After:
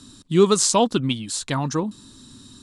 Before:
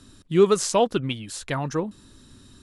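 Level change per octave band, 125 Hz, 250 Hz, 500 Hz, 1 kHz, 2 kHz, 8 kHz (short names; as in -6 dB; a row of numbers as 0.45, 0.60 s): +3.5, +4.0, +0.5, +3.0, +0.5, +8.0 dB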